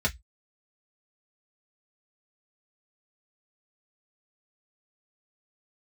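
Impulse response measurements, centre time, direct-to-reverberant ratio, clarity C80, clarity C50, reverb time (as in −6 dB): 7 ms, −2.5 dB, 37.0 dB, 23.5 dB, 0.10 s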